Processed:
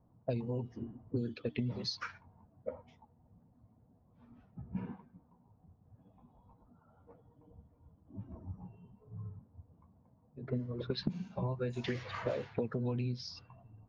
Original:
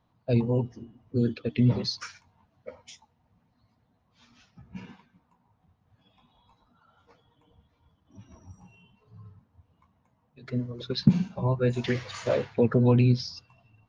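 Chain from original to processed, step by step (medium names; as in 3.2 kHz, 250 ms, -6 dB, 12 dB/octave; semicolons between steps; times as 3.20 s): level-controlled noise filter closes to 600 Hz, open at -22 dBFS; compression 16:1, threshold -36 dBFS, peak gain reduction 24 dB; trim +4 dB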